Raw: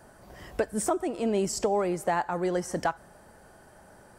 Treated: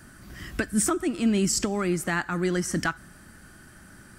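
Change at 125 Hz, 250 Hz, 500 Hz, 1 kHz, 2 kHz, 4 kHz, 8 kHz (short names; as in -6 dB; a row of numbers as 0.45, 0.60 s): +7.5, +6.0, -3.0, -3.5, +7.5, +7.5, +7.5 dB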